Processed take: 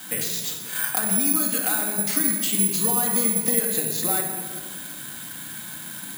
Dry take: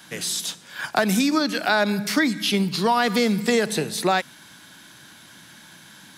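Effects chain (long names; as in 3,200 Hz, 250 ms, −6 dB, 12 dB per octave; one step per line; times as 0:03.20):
downward compressor 6 to 1, threshold −33 dBFS, peak gain reduction 16.5 dB
rectangular room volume 2,000 cubic metres, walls mixed, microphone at 2 metres
bad sample-rate conversion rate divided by 4×, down filtered, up zero stuff
level +2.5 dB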